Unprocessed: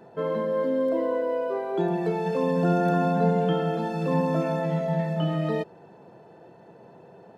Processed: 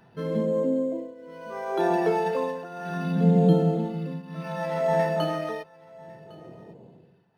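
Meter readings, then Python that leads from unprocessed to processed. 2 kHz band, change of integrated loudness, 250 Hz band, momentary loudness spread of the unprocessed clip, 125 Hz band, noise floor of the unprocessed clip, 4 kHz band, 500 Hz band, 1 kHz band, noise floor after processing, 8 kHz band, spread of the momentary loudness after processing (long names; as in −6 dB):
+0.5 dB, 0.0 dB, 0.0 dB, 5 LU, +0.5 dB, −51 dBFS, 0.0 dB, −1.0 dB, −1.0 dB, −56 dBFS, can't be measured, 17 LU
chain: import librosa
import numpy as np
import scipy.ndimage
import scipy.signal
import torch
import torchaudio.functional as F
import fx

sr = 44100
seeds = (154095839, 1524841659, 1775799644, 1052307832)

p1 = fx.phaser_stages(x, sr, stages=2, low_hz=100.0, high_hz=1600.0, hz=0.34, feedback_pct=45)
p2 = fx.tremolo_shape(p1, sr, shape='triangle', hz=0.65, depth_pct=90)
p3 = p2 + fx.echo_single(p2, sr, ms=1105, db=-22.5, dry=0)
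p4 = np.interp(np.arange(len(p3)), np.arange(len(p3))[::6], p3[::6])
y = p4 * librosa.db_to_amplitude(7.0)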